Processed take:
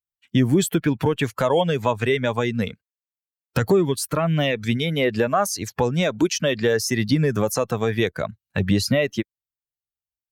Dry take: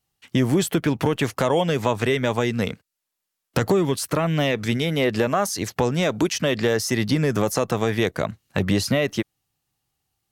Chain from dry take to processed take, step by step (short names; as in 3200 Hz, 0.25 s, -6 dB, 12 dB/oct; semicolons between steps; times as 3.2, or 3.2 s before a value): per-bin expansion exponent 1.5; gain +3.5 dB